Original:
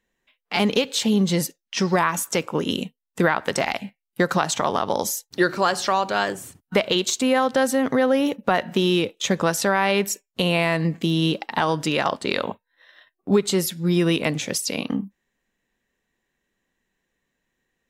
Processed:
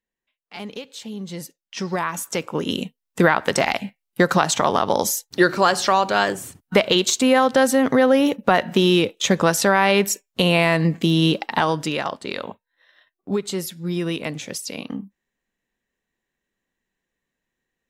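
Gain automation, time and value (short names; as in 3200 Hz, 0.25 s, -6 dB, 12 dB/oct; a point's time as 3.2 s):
1.15 s -13.5 dB
1.75 s -6 dB
3.22 s +3.5 dB
11.51 s +3.5 dB
12.17 s -5 dB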